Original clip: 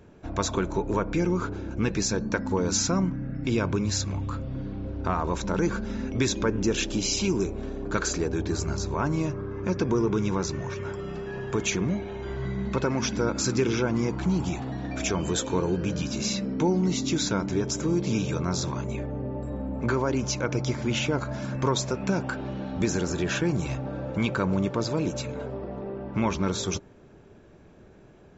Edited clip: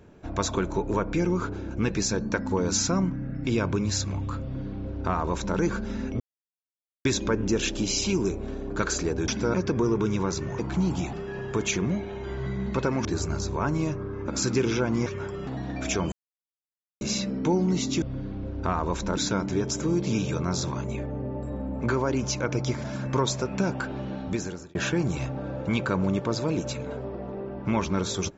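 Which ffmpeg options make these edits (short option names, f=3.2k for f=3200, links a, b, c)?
-filter_complex "[0:a]asplit=16[a][b][c][d][e][f][g][h][i][j][k][l][m][n][o][p];[a]atrim=end=6.2,asetpts=PTS-STARTPTS,afade=t=out:st=6.196:d=0.004:c=hsin,apad=pad_dur=0.85[q];[b]atrim=start=6.2:end=8.432,asetpts=PTS-STARTPTS,afade=t=in:d=0.004:c=hsin[r];[c]atrim=start=13.038:end=13.302[s];[d]atrim=start=9.658:end=10.712[t];[e]atrim=start=14.078:end=14.622[u];[f]atrim=start=11.118:end=13.042[v];[g]atrim=start=8.428:end=9.662[w];[h]atrim=start=13.298:end=14.082[x];[i]atrim=start=10.708:end=11.122[y];[j]atrim=start=14.618:end=15.27,asetpts=PTS-STARTPTS,afade=t=out:st=0.648:d=0.004:c=hsin[z];[k]atrim=start=15.27:end=16.16,asetpts=PTS-STARTPTS,volume=0[aa];[l]atrim=start=16.16:end=17.172,asetpts=PTS-STARTPTS,afade=t=in:d=0.004:c=hsin[ab];[m]atrim=start=4.428:end=5.582[ac];[n]atrim=start=17.168:end=20.842[ad];[o]atrim=start=21.328:end=23.24,asetpts=PTS-STARTPTS,afade=t=out:st=1.312:d=0.6[ae];[p]atrim=start=23.24,asetpts=PTS-STARTPTS,afade=t=in:d=0.004:c=hsin[af];[q][r]concat=n=2:v=0:a=1[ag];[ag][s]acrossfade=d=0.004:c1=hsin:c2=hsin[ah];[ah][t]acrossfade=d=0.004:c1=hsin:c2=hsin[ai];[ai][u]acrossfade=d=0.004:c1=hsin:c2=hsin[aj];[aj][v]acrossfade=d=0.004:c1=hsin:c2=hsin[ak];[ak][w]acrossfade=d=0.004:c1=hsin:c2=hsin[al];[al][x]acrossfade=d=0.004:c1=hsin:c2=hsin[am];[am][y]acrossfade=d=0.004:c1=hsin:c2=hsin[an];[z][aa][ab]concat=n=3:v=0:a=1[ao];[an][ao]acrossfade=d=0.004:c1=hsin:c2=hsin[ap];[ap][ac]acrossfade=d=0.004:c1=hsin:c2=hsin[aq];[aq][ad]acrossfade=d=0.004:c1=hsin:c2=hsin[ar];[ae][af]concat=n=2:v=0:a=1[as];[ar][as]acrossfade=d=0.004:c1=hsin:c2=hsin"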